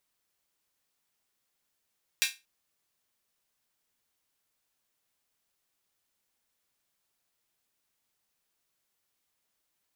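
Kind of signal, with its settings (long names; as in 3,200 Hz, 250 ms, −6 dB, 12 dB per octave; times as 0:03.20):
open synth hi-hat length 0.23 s, high-pass 2,300 Hz, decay 0.24 s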